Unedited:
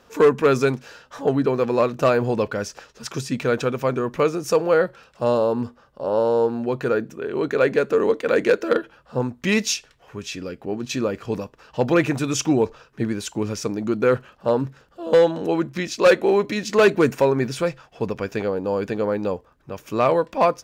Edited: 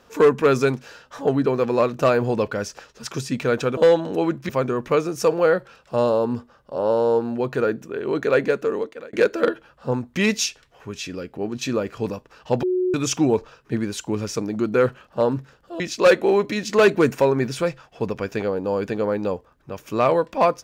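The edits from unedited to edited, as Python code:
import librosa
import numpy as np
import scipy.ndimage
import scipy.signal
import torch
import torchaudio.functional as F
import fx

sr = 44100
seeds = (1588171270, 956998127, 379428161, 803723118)

y = fx.edit(x, sr, fx.fade_out_span(start_s=7.7, length_s=0.71),
    fx.bleep(start_s=11.91, length_s=0.31, hz=366.0, db=-18.0),
    fx.move(start_s=15.08, length_s=0.72, to_s=3.77), tone=tone)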